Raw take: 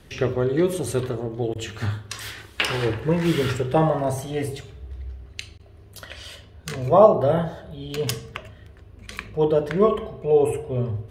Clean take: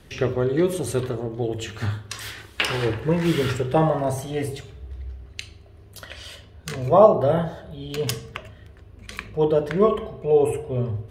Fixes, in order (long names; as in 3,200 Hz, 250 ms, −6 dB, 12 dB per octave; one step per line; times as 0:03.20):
repair the gap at 0:01.54/0:05.58, 13 ms